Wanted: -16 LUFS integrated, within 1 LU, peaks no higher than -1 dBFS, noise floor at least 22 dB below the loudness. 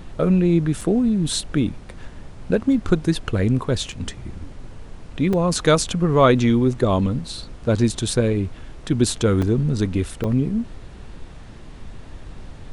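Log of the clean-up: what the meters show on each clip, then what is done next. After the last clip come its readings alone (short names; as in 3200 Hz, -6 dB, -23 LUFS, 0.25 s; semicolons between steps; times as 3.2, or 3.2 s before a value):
dropouts 5; longest dropout 4.5 ms; noise floor -40 dBFS; noise floor target -43 dBFS; loudness -20.5 LUFS; peak -3.0 dBFS; loudness target -16.0 LUFS
-> interpolate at 0.81/3.92/5.33/9.42/10.24, 4.5 ms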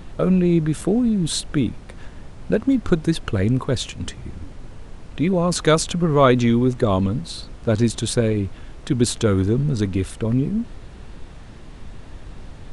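dropouts 0; noise floor -40 dBFS; noise floor target -43 dBFS
-> noise print and reduce 6 dB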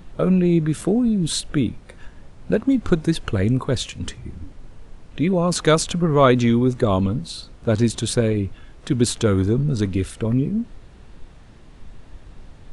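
noise floor -45 dBFS; loudness -20.5 LUFS; peak -3.0 dBFS; loudness target -16.0 LUFS
-> gain +4.5 dB; limiter -1 dBFS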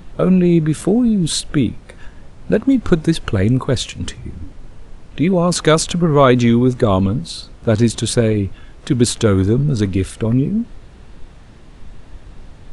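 loudness -16.0 LUFS; peak -1.0 dBFS; noise floor -40 dBFS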